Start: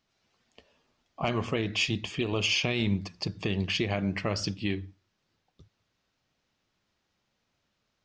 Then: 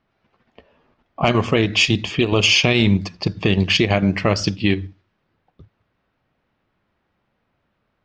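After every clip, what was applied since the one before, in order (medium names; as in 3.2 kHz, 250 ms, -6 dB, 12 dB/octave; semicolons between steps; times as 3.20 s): level-controlled noise filter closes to 1.9 kHz, open at -23.5 dBFS; in parallel at +2 dB: level held to a coarse grid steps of 15 dB; on the sum: trim +6.5 dB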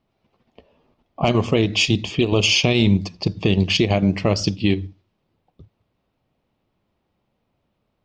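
peaking EQ 1.6 kHz -11 dB 0.93 oct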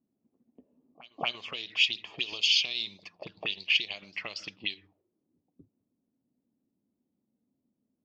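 auto-wah 250–4500 Hz, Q 4.2, up, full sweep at -13 dBFS; reverse echo 232 ms -21.5 dB; trim +1 dB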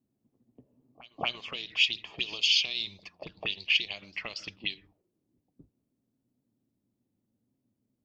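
octave divider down 1 oct, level -5 dB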